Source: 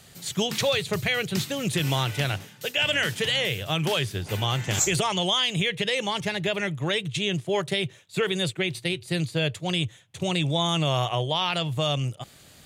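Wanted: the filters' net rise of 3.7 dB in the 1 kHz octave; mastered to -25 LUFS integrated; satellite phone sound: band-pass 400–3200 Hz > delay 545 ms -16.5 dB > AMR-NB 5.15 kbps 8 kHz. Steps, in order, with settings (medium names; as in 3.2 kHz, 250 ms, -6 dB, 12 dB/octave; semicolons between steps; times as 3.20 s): band-pass 400–3200 Hz; peaking EQ 1 kHz +5 dB; delay 545 ms -16.5 dB; trim +4.5 dB; AMR-NB 5.15 kbps 8 kHz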